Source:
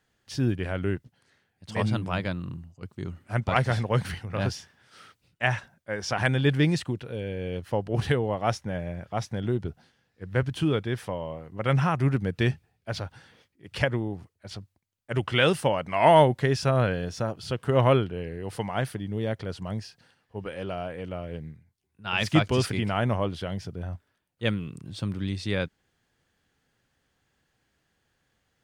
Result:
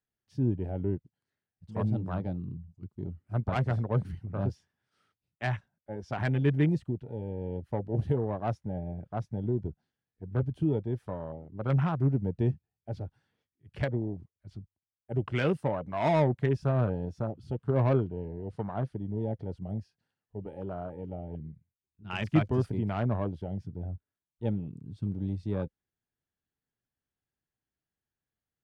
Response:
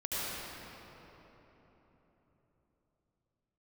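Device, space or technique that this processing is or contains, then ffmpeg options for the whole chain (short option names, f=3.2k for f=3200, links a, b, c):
one-band saturation: -filter_complex "[0:a]tiltshelf=f=880:g=3,afwtdn=0.0282,acrossover=split=470|3000[a][b][c];[b]asoftclip=type=tanh:threshold=-21dB[d];[a][d][c]amix=inputs=3:normalize=0,asettb=1/sr,asplit=3[e][f][g];[e]atrim=end=17.544[h];[f]atrim=start=17.54:end=19.08,asetpts=PTS-STARTPTS,afade=t=in:d=0.004:c=qsin,afade=t=out:st=1.536:d=0.004:c=qsin,lowpass=6.8k[i];[g]atrim=start=19.076[j];[h][i]acrossfade=d=0.004:c1=hsin:c2=qsin[k];[k][j]acrossfade=d=0.004:c1=qsin:c2=hsin,bandreject=f=510:w=12,volume=-5dB"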